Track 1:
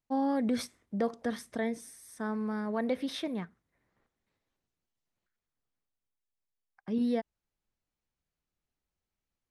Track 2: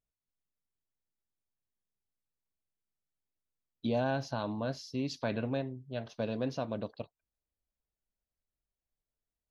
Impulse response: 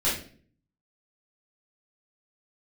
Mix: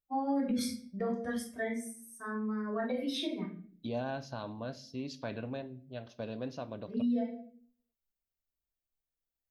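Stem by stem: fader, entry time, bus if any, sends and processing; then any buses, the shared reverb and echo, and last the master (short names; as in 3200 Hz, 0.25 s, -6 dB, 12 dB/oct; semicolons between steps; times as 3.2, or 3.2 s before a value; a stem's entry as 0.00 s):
-5.0 dB, 0.00 s, send -4.5 dB, per-bin expansion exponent 2; high shelf 4700 Hz +8 dB
-5.5 dB, 0.00 s, send -24 dB, dry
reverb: on, RT60 0.50 s, pre-delay 3 ms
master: limiter -25 dBFS, peak gain reduction 9.5 dB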